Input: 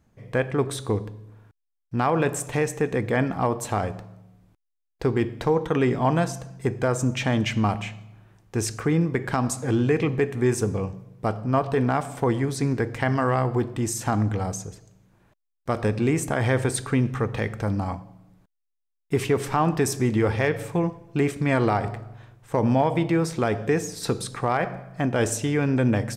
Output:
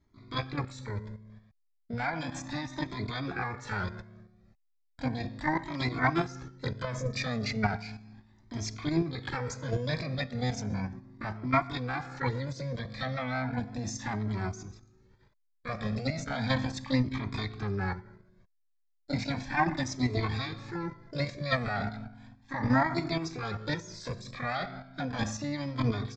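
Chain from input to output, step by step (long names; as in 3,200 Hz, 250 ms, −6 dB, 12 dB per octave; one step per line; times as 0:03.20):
output level in coarse steps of 10 dB
phaser with its sweep stopped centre 2,100 Hz, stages 8
pitch-shifted copies added +12 semitones 0 dB
downsampling to 16,000 Hz
flanger whose copies keep moving one way rising 0.35 Hz
level +2 dB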